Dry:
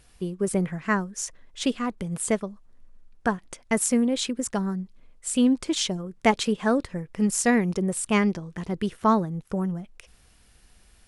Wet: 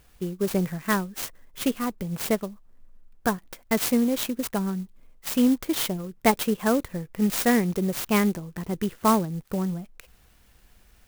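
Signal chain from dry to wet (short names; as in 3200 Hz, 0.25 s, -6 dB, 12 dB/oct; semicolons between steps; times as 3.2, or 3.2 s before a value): clock jitter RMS 0.049 ms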